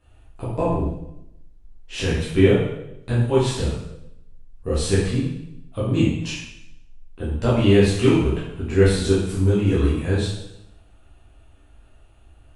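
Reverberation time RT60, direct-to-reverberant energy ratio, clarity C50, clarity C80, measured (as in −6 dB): 0.80 s, −9.0 dB, 1.0 dB, 4.5 dB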